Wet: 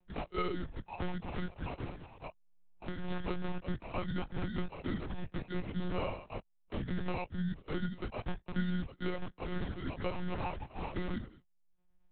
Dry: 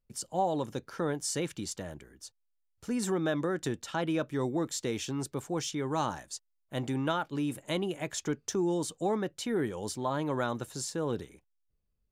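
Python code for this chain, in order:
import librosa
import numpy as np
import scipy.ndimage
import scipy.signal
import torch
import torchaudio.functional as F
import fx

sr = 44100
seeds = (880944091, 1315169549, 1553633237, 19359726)

y = fx.pitch_heads(x, sr, semitones=-9.0)
y = fx.noise_reduce_blind(y, sr, reduce_db=7)
y = fx.env_lowpass_down(y, sr, base_hz=2000.0, full_db=-31.0)
y = fx.peak_eq(y, sr, hz=140.0, db=-12.0, octaves=0.26)
y = fx.sample_hold(y, sr, seeds[0], rate_hz=1700.0, jitter_pct=0)
y = fx.chorus_voices(y, sr, voices=2, hz=0.4, base_ms=17, depth_ms=1.4, mix_pct=50)
y = fx.lpc_monotone(y, sr, seeds[1], pitch_hz=180.0, order=10)
y = fx.band_squash(y, sr, depth_pct=70)
y = F.gain(torch.from_numpy(y), 2.0).numpy()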